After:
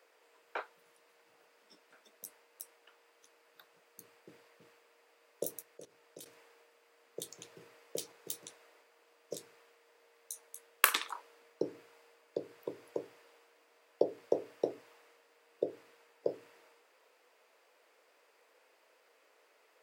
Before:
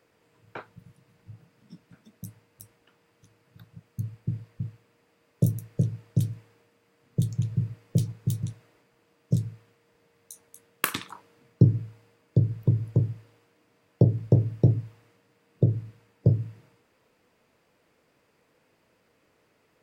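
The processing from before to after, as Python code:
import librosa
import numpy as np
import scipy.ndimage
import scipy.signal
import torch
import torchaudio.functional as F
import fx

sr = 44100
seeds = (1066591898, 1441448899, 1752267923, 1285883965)

y = scipy.signal.sosfilt(scipy.signal.butter(4, 440.0, 'highpass', fs=sr, output='sos'), x)
y = fx.level_steps(y, sr, step_db=17, at=(5.62, 6.26))
y = y * 10.0 ** (1.0 / 20.0)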